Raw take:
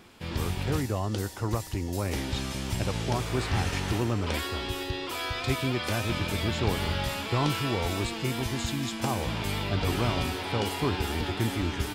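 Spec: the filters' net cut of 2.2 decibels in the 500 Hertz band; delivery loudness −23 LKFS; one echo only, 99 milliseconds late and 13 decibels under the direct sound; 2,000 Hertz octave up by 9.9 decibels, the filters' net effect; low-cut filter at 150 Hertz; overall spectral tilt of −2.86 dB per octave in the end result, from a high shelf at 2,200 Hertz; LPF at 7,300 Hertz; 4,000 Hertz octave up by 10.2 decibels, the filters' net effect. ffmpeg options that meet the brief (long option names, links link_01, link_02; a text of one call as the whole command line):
ffmpeg -i in.wav -af "highpass=150,lowpass=7300,equalizer=frequency=500:width_type=o:gain=-3.5,equalizer=frequency=2000:width_type=o:gain=8.5,highshelf=frequency=2200:gain=3,equalizer=frequency=4000:width_type=o:gain=7.5,aecho=1:1:99:0.224,volume=1.5dB" out.wav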